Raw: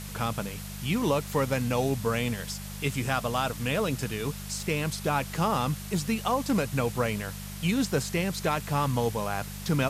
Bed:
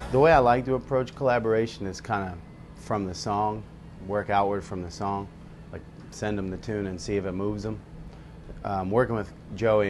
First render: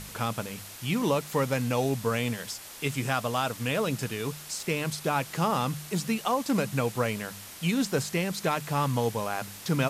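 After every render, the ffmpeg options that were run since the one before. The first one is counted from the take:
-af "bandreject=f=50:t=h:w=4,bandreject=f=100:t=h:w=4,bandreject=f=150:t=h:w=4,bandreject=f=200:t=h:w=4"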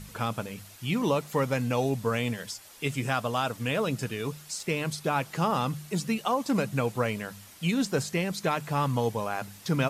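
-af "afftdn=nr=8:nf=-44"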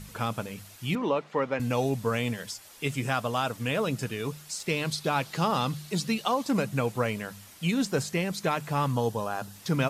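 -filter_complex "[0:a]asettb=1/sr,asplit=3[s0][s1][s2];[s0]atrim=end=0.954[s3];[s1]atrim=start=0.95:end=1.6,asetpts=PTS-STARTPTS,afade=t=in:d=0.004:c=qsin,afade=t=out:st=0.646:d=0.004:c=qsin,highpass=250,lowpass=2800[s4];[s2]atrim=start=1.596[s5];[s3][s4]acrossfade=d=0.004:c1=hsin:c2=qsin[s6];[s6][s5]acrossfade=d=0.004:c1=qsin:c2=hsin,asettb=1/sr,asplit=3[s7][s8][s9];[s7]atrim=end=4.664[s10];[s8]atrim=start=4.66:end=6.46,asetpts=PTS-STARTPTS,afade=t=in:d=0.004:c=qsin,afade=t=out:st=1.796:d=0.004:c=qsin,equalizer=f=4100:w=1.7:g=7[s11];[s9]atrim=start=6.456[s12];[s10][s11]acrossfade=d=0.004:c1=hsin:c2=qsin[s13];[s13][s12]acrossfade=d=0.004:c1=qsin:c2=hsin,asettb=1/sr,asplit=3[s14][s15][s16];[s14]atrim=end=8.934[s17];[s15]atrim=start=8.93:end=9.56,asetpts=PTS-STARTPTS,afade=t=in:d=0.004:c=qsin,afade=t=out:st=0.626:d=0.004:c=qsin,equalizer=f=2200:t=o:w=0.29:g=-14[s18];[s16]atrim=start=9.556[s19];[s17][s18]acrossfade=d=0.004:c1=hsin:c2=qsin[s20];[s20][s19]acrossfade=d=0.004:c1=qsin:c2=hsin"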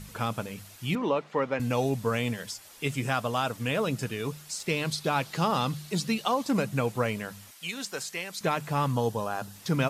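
-filter_complex "[0:a]asettb=1/sr,asplit=3[s0][s1][s2];[s0]atrim=end=7.514[s3];[s1]atrim=start=7.51:end=8.41,asetpts=PTS-STARTPTS,afade=t=in:d=0.004:c=qsin,afade=t=out:st=0.896:d=0.004:c=qsin,highpass=f=1300:p=1[s4];[s2]atrim=start=8.406[s5];[s3][s4]acrossfade=d=0.004:c1=hsin:c2=qsin[s6];[s6][s5]acrossfade=d=0.004:c1=qsin:c2=hsin"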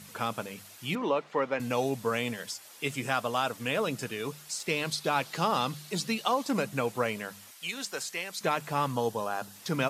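-af "highpass=97,lowshelf=f=160:g=-11"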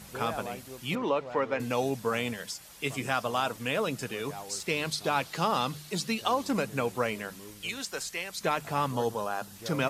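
-filter_complex "[1:a]volume=0.106[s0];[0:a][s0]amix=inputs=2:normalize=0"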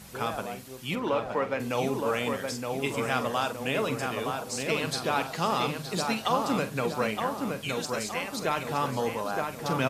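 -filter_complex "[0:a]asplit=2[s0][s1];[s1]adelay=46,volume=0.251[s2];[s0][s2]amix=inputs=2:normalize=0,asplit=2[s3][s4];[s4]adelay=918,lowpass=f=2200:p=1,volume=0.668,asplit=2[s5][s6];[s6]adelay=918,lowpass=f=2200:p=1,volume=0.52,asplit=2[s7][s8];[s8]adelay=918,lowpass=f=2200:p=1,volume=0.52,asplit=2[s9][s10];[s10]adelay=918,lowpass=f=2200:p=1,volume=0.52,asplit=2[s11][s12];[s12]adelay=918,lowpass=f=2200:p=1,volume=0.52,asplit=2[s13][s14];[s14]adelay=918,lowpass=f=2200:p=1,volume=0.52,asplit=2[s15][s16];[s16]adelay=918,lowpass=f=2200:p=1,volume=0.52[s17];[s3][s5][s7][s9][s11][s13][s15][s17]amix=inputs=8:normalize=0"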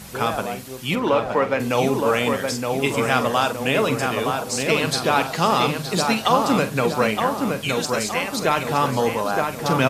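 -af "volume=2.66"

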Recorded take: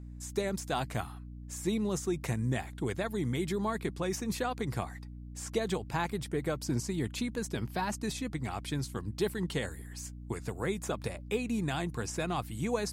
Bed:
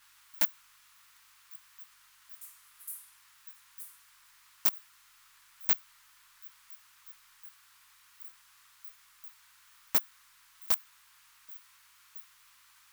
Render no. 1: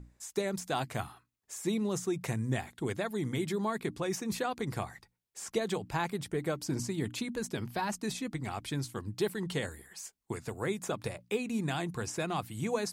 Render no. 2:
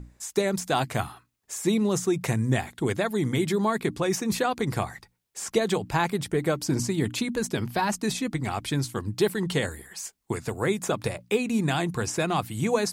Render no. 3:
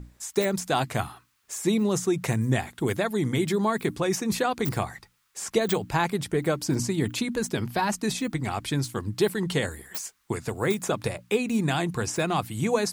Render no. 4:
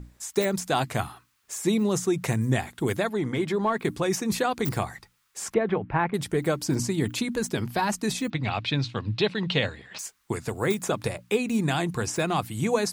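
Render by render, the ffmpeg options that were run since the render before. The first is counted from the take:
-af "bandreject=f=60:t=h:w=6,bandreject=f=120:t=h:w=6,bandreject=f=180:t=h:w=6,bandreject=f=240:t=h:w=6,bandreject=f=300:t=h:w=6"
-af "volume=2.51"
-filter_complex "[1:a]volume=0.335[s0];[0:a][s0]amix=inputs=2:normalize=0"
-filter_complex "[0:a]asettb=1/sr,asplit=3[s0][s1][s2];[s0]atrim=end=3.094[s3];[s1]atrim=start=3.09:end=3.85,asetpts=PTS-STARTPTS,afade=t=in:d=0.004:c=qsin,afade=t=out:st=0.756:d=0.004:c=qsin,asplit=2[s4][s5];[s5]highpass=f=720:p=1,volume=3.16,asoftclip=type=tanh:threshold=0.224[s6];[s4][s6]amix=inputs=2:normalize=0,lowpass=f=1300:p=1,volume=0.501[s7];[s2]atrim=start=3.846[s8];[s3][s7]acrossfade=d=0.004:c1=hsin:c2=qsin[s9];[s9][s8]acrossfade=d=0.004:c1=qsin:c2=hsin,asettb=1/sr,asplit=3[s10][s11][s12];[s10]atrim=end=5.544[s13];[s11]atrim=start=5.54:end=6.14,asetpts=PTS-STARTPTS,afade=t=in:d=0.004:c=qsin,afade=t=out:st=0.596:d=0.004:c=qsin,lowpass=f=2300:w=0.5412,lowpass=f=2300:w=1.3066[s14];[s12]atrim=start=6.136[s15];[s13][s14]acrossfade=d=0.004:c1=hsin:c2=qsin[s16];[s16][s15]acrossfade=d=0.004:c1=qsin:c2=hsin,asettb=1/sr,asplit=3[s17][s18][s19];[s17]atrim=end=8.304[s20];[s18]atrim=start=8.3:end=9.99,asetpts=PTS-STARTPTS,afade=t=in:d=0.004:c=qsin,afade=t=out:st=1.686:d=0.004:c=qsin,highpass=100,equalizer=f=110:t=q:w=4:g=8,equalizer=f=360:t=q:w=4:g=-6,equalizer=f=590:t=q:w=4:g=4,equalizer=f=2600:t=q:w=4:g=9,equalizer=f=3800:t=q:w=4:g=8,lowpass=f=4900:w=0.5412,lowpass=f=4900:w=1.3066[s21];[s19]atrim=start=9.986[s22];[s20][s21]acrossfade=d=0.004:c1=hsin:c2=qsin[s23];[s23][s22]acrossfade=d=0.004:c1=qsin:c2=hsin"

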